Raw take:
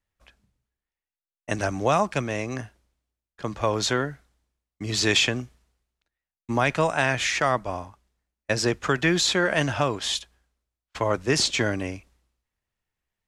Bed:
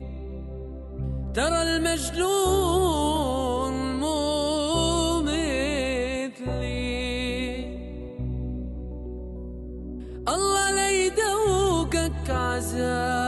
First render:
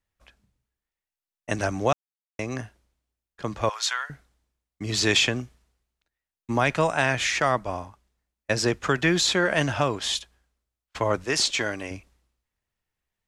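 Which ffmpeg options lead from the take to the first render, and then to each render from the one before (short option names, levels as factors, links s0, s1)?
-filter_complex "[0:a]asettb=1/sr,asplit=3[s0][s1][s2];[s0]atrim=end=3.694[s3];[s1]atrim=start=3.69:end=4.1,asetpts=PTS-STARTPTS,afade=t=in:d=0.004:c=qsin,afade=t=out:st=0.406:d=0.004:c=qsin,highpass=f=1000:w=0.5412,highpass=f=1000:w=1.3066[s4];[s2]atrim=start=4.096[s5];[s3][s4]acrossfade=d=0.004:c1=hsin:c2=qsin[s6];[s6][s5]acrossfade=d=0.004:c1=qsin:c2=hsin,asettb=1/sr,asplit=3[s7][s8][s9];[s7]atrim=end=11.244[s10];[s8]atrim=start=11.24:end=11.91,asetpts=PTS-STARTPTS,afade=t=in:d=0.004:c=qsin,afade=t=out:st=0.666:d=0.004:c=qsin,equalizer=f=100:w=0.31:g=-10.5[s11];[s9]atrim=start=11.906[s12];[s10][s11]acrossfade=d=0.004:c1=hsin:c2=qsin[s13];[s13][s12]acrossfade=d=0.004:c1=qsin:c2=hsin,asplit=3[s14][s15][s16];[s14]atrim=end=1.93,asetpts=PTS-STARTPTS,afade=t=out:st=1.926:d=0.004:c=hsin[s17];[s15]atrim=start=1.93:end=2.39,asetpts=PTS-STARTPTS,volume=0[s18];[s16]atrim=start=2.39,asetpts=PTS-STARTPTS,afade=t=in:d=0.004:c=hsin[s19];[s17][s18][s19]concat=n=3:v=0:a=1"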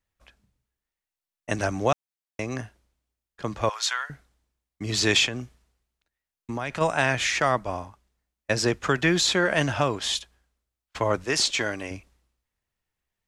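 -filter_complex "[0:a]asplit=3[s0][s1][s2];[s0]afade=t=out:st=5.26:d=0.02[s3];[s1]acompressor=threshold=0.0398:ratio=3:attack=3.2:release=140:knee=1:detection=peak,afade=t=in:st=5.26:d=0.02,afade=t=out:st=6.8:d=0.02[s4];[s2]afade=t=in:st=6.8:d=0.02[s5];[s3][s4][s5]amix=inputs=3:normalize=0"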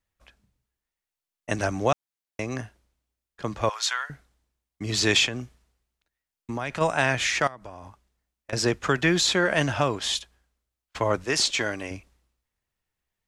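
-filter_complex "[0:a]asettb=1/sr,asplit=3[s0][s1][s2];[s0]atrim=end=7.474[s3];[s1]atrim=start=7.47:end=8.53,asetpts=PTS-STARTPTS,afade=t=in:d=0.004:c=qsin,afade=t=out:st=1.056:d=0.004:c=qsin,acompressor=threshold=0.0178:ratio=20:attack=3.2:release=140:knee=1:detection=peak[s4];[s2]atrim=start=8.526[s5];[s3][s4]acrossfade=d=0.004:c1=hsin:c2=qsin[s6];[s6][s5]acrossfade=d=0.004:c1=qsin:c2=hsin"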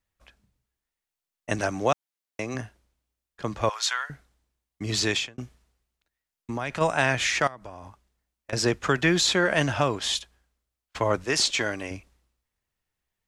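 -filter_complex "[0:a]asettb=1/sr,asplit=3[s0][s1][s2];[s0]atrim=end=1.614[s3];[s1]atrim=start=1.61:end=2.55,asetpts=PTS-STARTPTS,afade=t=in:d=0.004:c=qsin,afade=t=out:st=0.936:d=0.004:c=qsin,highpass=f=150:p=1[s4];[s2]atrim=start=2.546[s5];[s3][s4]acrossfade=d=0.004:c1=hsin:c2=qsin[s6];[s6][s5]acrossfade=d=0.004:c1=qsin:c2=hsin,asplit=2[s7][s8];[s7]atrim=end=5.38,asetpts=PTS-STARTPTS,afade=t=out:st=4.94:d=0.44[s9];[s8]atrim=start=5.38,asetpts=PTS-STARTPTS,afade=t=in:d=0.004:c=hsin[s10];[s9][s10]concat=n=2:v=0:a=1"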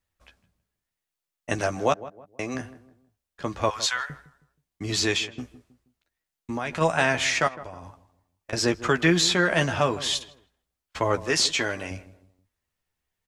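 -filter_complex "[0:a]asplit=2[s0][s1];[s1]adelay=12,volume=0.447[s2];[s0][s2]amix=inputs=2:normalize=0,asplit=2[s3][s4];[s4]adelay=159,lowpass=f=1100:p=1,volume=0.178,asplit=2[s5][s6];[s6]adelay=159,lowpass=f=1100:p=1,volume=0.38,asplit=2[s7][s8];[s8]adelay=159,lowpass=f=1100:p=1,volume=0.38[s9];[s3][s5][s7][s9]amix=inputs=4:normalize=0"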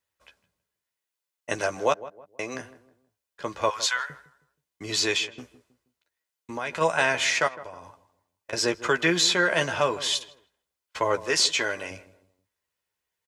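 -af "highpass=f=330:p=1,aecho=1:1:2:0.3"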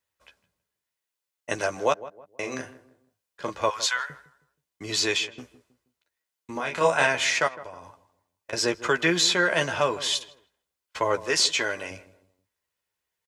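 -filter_complex "[0:a]asplit=3[s0][s1][s2];[s0]afade=t=out:st=2.42:d=0.02[s3];[s1]asplit=2[s4][s5];[s5]adelay=39,volume=0.596[s6];[s4][s6]amix=inputs=2:normalize=0,afade=t=in:st=2.42:d=0.02,afade=t=out:st=3.49:d=0.02[s7];[s2]afade=t=in:st=3.49:d=0.02[s8];[s3][s7][s8]amix=inputs=3:normalize=0,asettb=1/sr,asplit=3[s9][s10][s11];[s9]atrim=end=6.534[s12];[s10]atrim=start=6.53:end=7.07,asetpts=PTS-STARTPTS,afade=t=in:d=0.004:c=qsin,afade=t=out:st=0.536:d=0.004:c=qsin,asplit=2[s13][s14];[s14]adelay=29,volume=0.708[s15];[s13][s15]amix=inputs=2:normalize=0,atrim=end_sample=23814[s16];[s11]atrim=start=7.066[s17];[s12][s16]acrossfade=d=0.004:c1=hsin:c2=qsin[s18];[s18][s17]acrossfade=d=0.004:c1=qsin:c2=hsin"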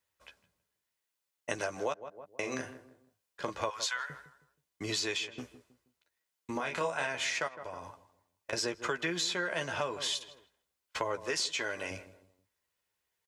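-af "acompressor=threshold=0.0251:ratio=4"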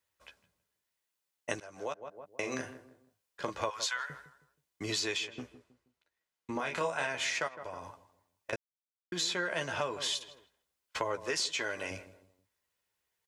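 -filter_complex "[0:a]asettb=1/sr,asplit=3[s0][s1][s2];[s0]atrim=end=5.384[s3];[s1]atrim=start=5.38:end=6.59,asetpts=PTS-STARTPTS,afade=t=in:d=0.004:c=qsin,afade=t=out:st=1.206:d=0.004:c=qsin,highshelf=f=5700:g=-9.5[s4];[s2]atrim=start=6.586[s5];[s3][s4]acrossfade=d=0.004:c1=hsin:c2=qsin[s6];[s6][s5]acrossfade=d=0.004:c1=qsin:c2=hsin,asplit=4[s7][s8][s9][s10];[s7]atrim=end=1.6,asetpts=PTS-STARTPTS,afade=t=out:st=1.596:d=0.004:c=hsin:silence=0.0707946[s11];[s8]atrim=start=1.6:end=8.56,asetpts=PTS-STARTPTS,afade=t=in:d=0.47:silence=0.0707946,afade=t=out:st=6.956:d=0.004:c=hsin[s12];[s9]atrim=start=8.56:end=9.12,asetpts=PTS-STARTPTS,volume=0[s13];[s10]atrim=start=9.12,asetpts=PTS-STARTPTS,afade=t=in:d=0.004:c=hsin[s14];[s11][s12][s13][s14]concat=n=4:v=0:a=1"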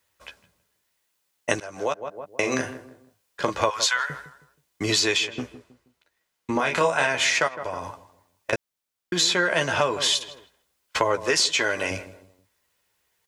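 -af "volume=3.76"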